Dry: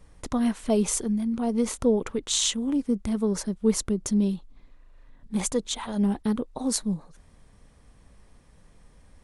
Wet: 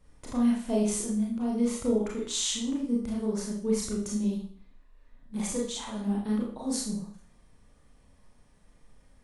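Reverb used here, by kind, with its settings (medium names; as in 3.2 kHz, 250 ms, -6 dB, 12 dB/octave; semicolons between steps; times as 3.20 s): Schroeder reverb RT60 0.49 s, combs from 26 ms, DRR -3.5 dB; trim -9.5 dB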